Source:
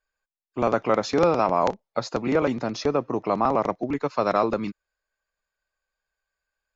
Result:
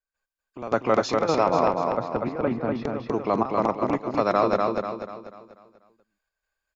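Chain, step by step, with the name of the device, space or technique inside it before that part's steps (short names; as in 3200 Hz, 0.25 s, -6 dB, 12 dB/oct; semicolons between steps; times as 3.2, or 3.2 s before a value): 1.49–2.85 air absorption 480 m; trance gate with a delay (step gate ".xxx.xxx" 105 bpm -12 dB; feedback echo 0.244 s, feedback 43%, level -3 dB)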